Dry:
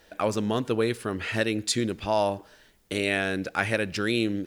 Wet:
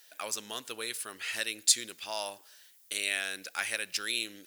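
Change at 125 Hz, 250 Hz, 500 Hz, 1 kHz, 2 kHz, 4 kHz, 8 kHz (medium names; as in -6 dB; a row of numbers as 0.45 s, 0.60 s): under -25 dB, -22.0 dB, -16.5 dB, -11.5 dB, -5.0 dB, +0.5 dB, +6.0 dB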